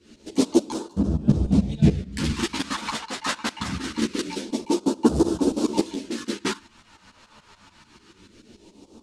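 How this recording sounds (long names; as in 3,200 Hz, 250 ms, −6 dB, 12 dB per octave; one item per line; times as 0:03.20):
phaser sweep stages 2, 0.24 Hz, lowest notch 340–2,000 Hz
tremolo saw up 6.9 Hz, depth 85%
a shimmering, thickened sound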